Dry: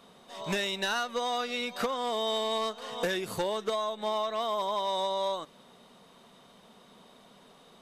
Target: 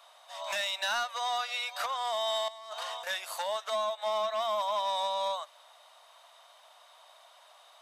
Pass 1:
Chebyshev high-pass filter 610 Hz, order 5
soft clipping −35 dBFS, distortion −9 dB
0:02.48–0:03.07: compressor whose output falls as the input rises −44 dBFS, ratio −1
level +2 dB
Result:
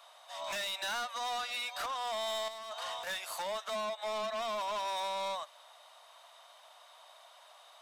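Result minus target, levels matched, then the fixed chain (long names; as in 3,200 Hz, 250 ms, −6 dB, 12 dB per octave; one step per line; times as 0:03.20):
soft clipping: distortion +12 dB
Chebyshev high-pass filter 610 Hz, order 5
soft clipping −24.5 dBFS, distortion −21 dB
0:02.48–0:03.07: compressor whose output falls as the input rises −44 dBFS, ratio −1
level +2 dB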